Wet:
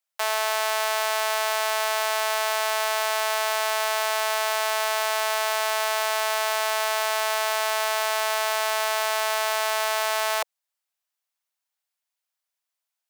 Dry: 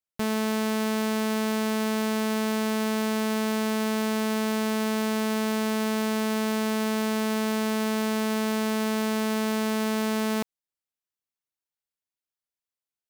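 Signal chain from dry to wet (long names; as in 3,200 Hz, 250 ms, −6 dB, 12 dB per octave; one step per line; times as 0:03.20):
Butterworth high-pass 570 Hz 48 dB per octave
level +7.5 dB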